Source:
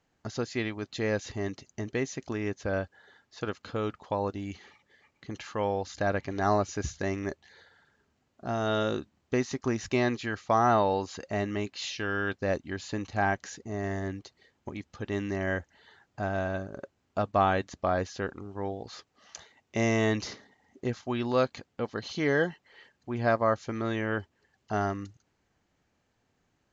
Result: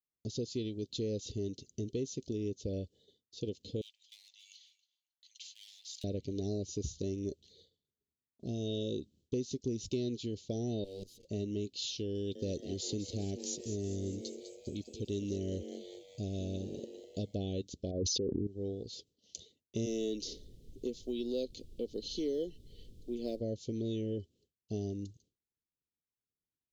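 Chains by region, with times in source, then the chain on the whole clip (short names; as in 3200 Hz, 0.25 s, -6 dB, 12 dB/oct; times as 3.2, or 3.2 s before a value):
3.81–6.04 overloaded stage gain 25 dB + steep high-pass 1200 Hz 48 dB/oct + echo with dull and thin repeats by turns 0.137 s, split 1800 Hz, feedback 65%, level -7.5 dB
10.84–11.25 minimum comb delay 8.8 ms + level quantiser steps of 19 dB
12.15–17.35 high shelf 4700 Hz +10.5 dB + frequency-shifting echo 0.2 s, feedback 65%, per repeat +130 Hz, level -10.5 dB
17.91–18.47 formant sharpening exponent 2 + fast leveller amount 100%
19.85–23.39 HPF 240 Hz 24 dB/oct + added noise brown -51 dBFS + short-mantissa float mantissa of 6-bit
whole clip: Chebyshev band-stop 460–3400 Hz, order 3; expander -59 dBFS; compressor 2.5:1, threshold -34 dBFS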